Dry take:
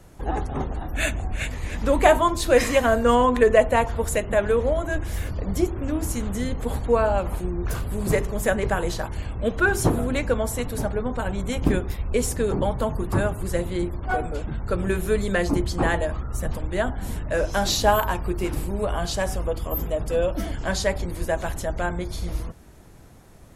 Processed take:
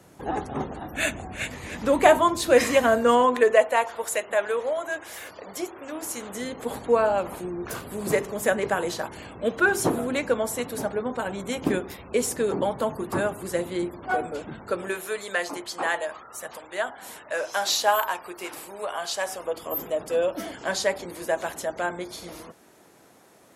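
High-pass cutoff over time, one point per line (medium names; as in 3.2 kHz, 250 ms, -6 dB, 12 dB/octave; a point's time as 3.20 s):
2.83 s 150 Hz
3.73 s 590 Hz
5.87 s 590 Hz
6.82 s 230 Hz
14.58 s 230 Hz
15.08 s 670 Hz
19.15 s 670 Hz
19.73 s 310 Hz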